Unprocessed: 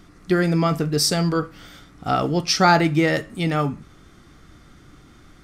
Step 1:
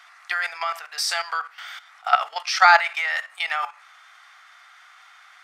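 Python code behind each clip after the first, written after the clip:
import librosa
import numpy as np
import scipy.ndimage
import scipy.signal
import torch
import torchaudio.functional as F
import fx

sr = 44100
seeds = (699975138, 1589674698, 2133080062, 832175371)

y = scipy.signal.sosfilt(scipy.signal.ellip(4, 1.0, 70, 740.0, 'highpass', fs=sr, output='sos'), x)
y = fx.peak_eq(y, sr, hz=1900.0, db=11.0, octaves=2.4)
y = fx.level_steps(y, sr, step_db=13)
y = y * 10.0 ** (1.5 / 20.0)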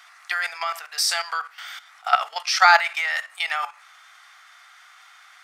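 y = fx.high_shelf(x, sr, hz=4900.0, db=7.5)
y = y * 10.0 ** (-1.0 / 20.0)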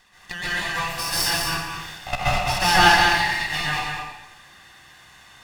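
y = fx.lower_of_two(x, sr, delay_ms=1.1)
y = y + 10.0 ** (-5.0 / 20.0) * np.pad(y, (int(206 * sr / 1000.0), 0))[:len(y)]
y = fx.rev_plate(y, sr, seeds[0], rt60_s=0.92, hf_ratio=0.95, predelay_ms=115, drr_db=-8.5)
y = y * 10.0 ** (-6.5 / 20.0)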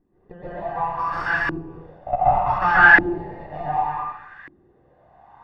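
y = 10.0 ** (-11.5 / 20.0) * np.tanh(x / 10.0 ** (-11.5 / 20.0))
y = fx.filter_lfo_lowpass(y, sr, shape='saw_up', hz=0.67, low_hz=310.0, high_hz=1800.0, q=5.5)
y = y * 10.0 ** (-2.5 / 20.0)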